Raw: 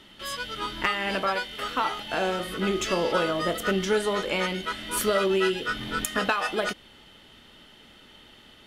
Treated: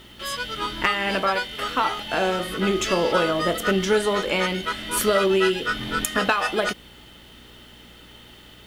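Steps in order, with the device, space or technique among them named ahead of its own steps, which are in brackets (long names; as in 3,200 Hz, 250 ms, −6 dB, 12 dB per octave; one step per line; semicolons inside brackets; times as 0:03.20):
video cassette with head-switching buzz (hum with harmonics 60 Hz, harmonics 8, −57 dBFS; white noise bed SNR 37 dB)
level +4 dB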